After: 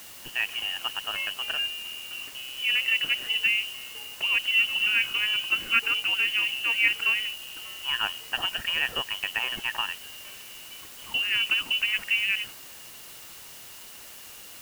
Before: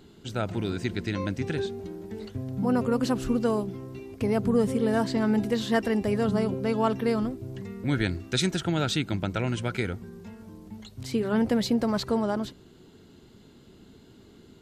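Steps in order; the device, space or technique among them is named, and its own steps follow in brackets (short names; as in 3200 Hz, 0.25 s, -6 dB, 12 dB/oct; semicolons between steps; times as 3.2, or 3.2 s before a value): scrambled radio voice (BPF 360–2600 Hz; inverted band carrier 3200 Hz; white noise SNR 16 dB); gain +3.5 dB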